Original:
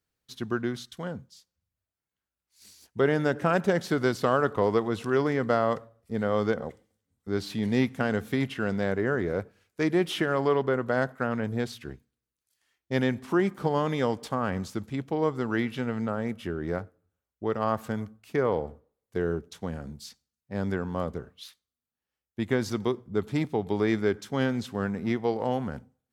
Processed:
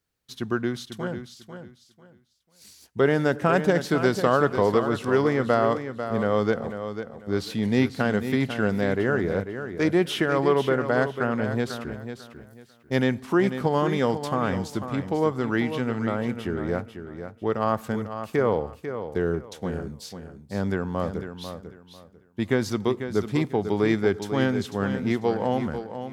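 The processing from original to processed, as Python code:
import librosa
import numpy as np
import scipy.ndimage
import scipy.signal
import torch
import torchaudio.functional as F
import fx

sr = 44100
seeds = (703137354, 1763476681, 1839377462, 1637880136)

y = fx.high_shelf(x, sr, hz=9800.0, db=12.0, at=(11.92, 12.96))
y = fx.echo_feedback(y, sr, ms=495, feedback_pct=24, wet_db=-9.5)
y = F.gain(torch.from_numpy(y), 3.0).numpy()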